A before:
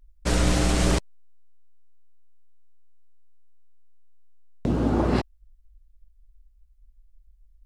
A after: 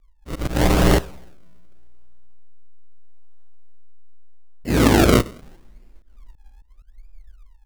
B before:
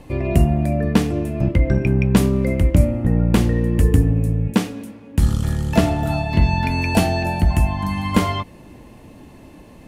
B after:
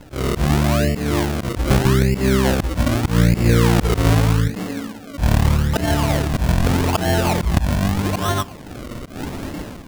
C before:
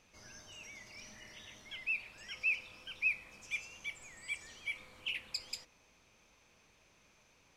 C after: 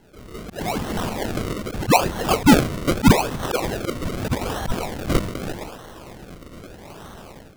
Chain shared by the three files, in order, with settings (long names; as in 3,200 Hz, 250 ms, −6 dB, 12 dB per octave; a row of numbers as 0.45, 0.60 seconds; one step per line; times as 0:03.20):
coupled-rooms reverb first 0.76 s, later 2.3 s, from −22 dB, DRR 15.5 dB
automatic gain control gain up to 14 dB
dynamic equaliser 440 Hz, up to +3 dB, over −28 dBFS, Q 1.7
sample-and-hold swept by an LFO 36×, swing 100% 0.81 Hz
volume swells 136 ms
normalise the peak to −3 dBFS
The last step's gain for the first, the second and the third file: −2.0, +1.0, +13.5 decibels